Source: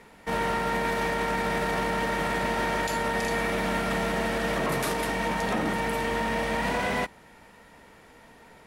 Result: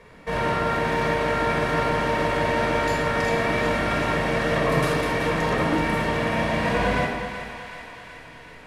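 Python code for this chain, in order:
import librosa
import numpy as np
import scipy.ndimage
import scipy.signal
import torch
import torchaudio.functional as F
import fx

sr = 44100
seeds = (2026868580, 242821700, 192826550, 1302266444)

y = fx.high_shelf(x, sr, hz=7900.0, db=-11.5)
y = fx.echo_thinned(y, sr, ms=377, feedback_pct=69, hz=650.0, wet_db=-9.0)
y = fx.room_shoebox(y, sr, seeds[0], volume_m3=3900.0, walls='furnished', distance_m=5.5)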